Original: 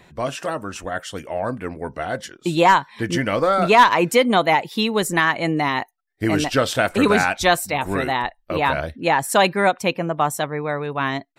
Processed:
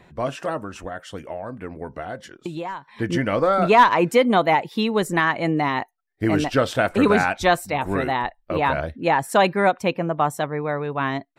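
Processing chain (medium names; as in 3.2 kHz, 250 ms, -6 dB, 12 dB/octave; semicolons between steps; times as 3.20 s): treble shelf 2.8 kHz -9 dB; 0.58–2.88 s: compression 10:1, threshold -28 dBFS, peak gain reduction 17 dB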